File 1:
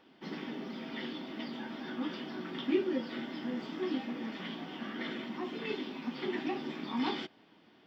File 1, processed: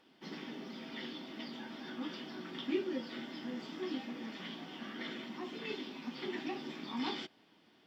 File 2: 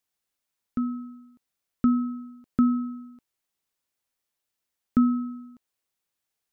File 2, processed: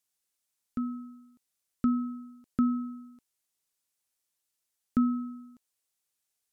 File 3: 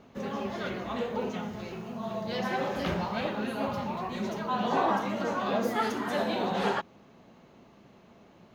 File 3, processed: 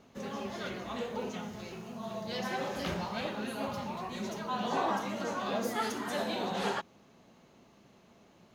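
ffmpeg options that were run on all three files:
ffmpeg -i in.wav -af "equalizer=frequency=9000:width=0.47:gain=9.5,volume=-5dB" out.wav

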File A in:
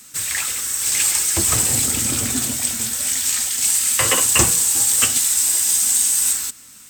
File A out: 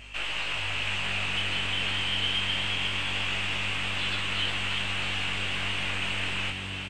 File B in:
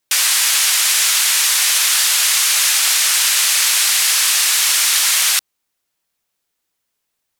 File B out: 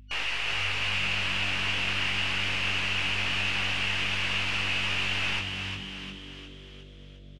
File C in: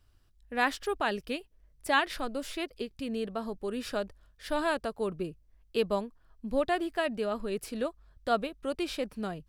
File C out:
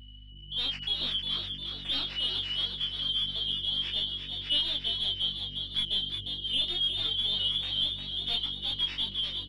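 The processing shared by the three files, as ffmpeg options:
ffmpeg -i in.wav -filter_complex "[0:a]afftfilt=real='real(if(lt(b,272),68*(eq(floor(b/68),0)*1+eq(floor(b/68),1)*3+eq(floor(b/68),2)*0+eq(floor(b/68),3)*2)+mod(b,68),b),0)':imag='imag(if(lt(b,272),68*(eq(floor(b/68),0)*1+eq(floor(b/68),1)*3+eq(floor(b/68),2)*0+eq(floor(b/68),3)*2)+mod(b,68),b),0)':win_size=2048:overlap=0.75,highpass=frequency=120:width=0.5412,highpass=frequency=120:width=1.3066,aderivative,bandreject=frequency=60:width_type=h:width=6,bandreject=frequency=120:width_type=h:width=6,bandreject=frequency=180:width_type=h:width=6,bandreject=frequency=240:width_type=h:width=6,bandreject=frequency=300:width_type=h:width=6,alimiter=limit=-11.5dB:level=0:latency=1:release=27,acontrast=64,aeval=exprs='(tanh(15.8*val(0)+0.55)-tanh(0.55))/15.8':channel_layout=same,lowpass=frequency=2800:width_type=q:width=4.5,asplit=2[link_01][link_02];[link_02]highpass=frequency=720:poles=1,volume=9dB,asoftclip=type=tanh:threshold=-13.5dB[link_03];[link_01][link_03]amix=inputs=2:normalize=0,lowpass=frequency=1800:poles=1,volume=-6dB,aeval=exprs='val(0)+0.00355*(sin(2*PI*50*n/s)+sin(2*PI*2*50*n/s)/2+sin(2*PI*3*50*n/s)/3+sin(2*PI*4*50*n/s)/4+sin(2*PI*5*50*n/s)/5)':channel_layout=same,flanger=delay=17:depth=5.7:speed=0.22,asplit=8[link_04][link_05][link_06][link_07][link_08][link_09][link_10][link_11];[link_05]adelay=355,afreqshift=96,volume=-6dB[link_12];[link_06]adelay=710,afreqshift=192,volume=-11.5dB[link_13];[link_07]adelay=1065,afreqshift=288,volume=-17dB[link_14];[link_08]adelay=1420,afreqshift=384,volume=-22.5dB[link_15];[link_09]adelay=1775,afreqshift=480,volume=-28.1dB[link_16];[link_10]adelay=2130,afreqshift=576,volume=-33.6dB[link_17];[link_11]adelay=2485,afreqshift=672,volume=-39.1dB[link_18];[link_04][link_12][link_13][link_14][link_15][link_16][link_17][link_18]amix=inputs=8:normalize=0,volume=3dB" out.wav

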